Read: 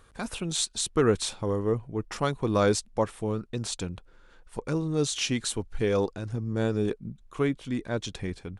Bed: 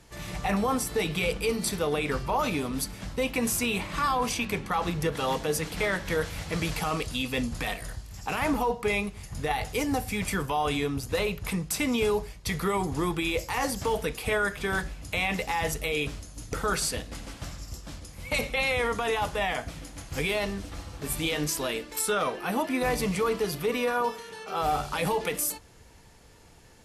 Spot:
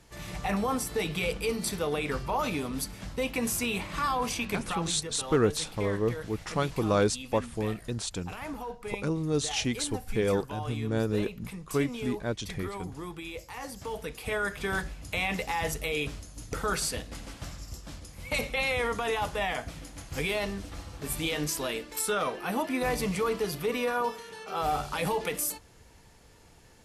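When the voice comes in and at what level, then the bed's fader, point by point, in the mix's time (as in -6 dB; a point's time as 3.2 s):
4.35 s, -1.5 dB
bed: 4.61 s -2.5 dB
5.02 s -11.5 dB
13.64 s -11.5 dB
14.58 s -2 dB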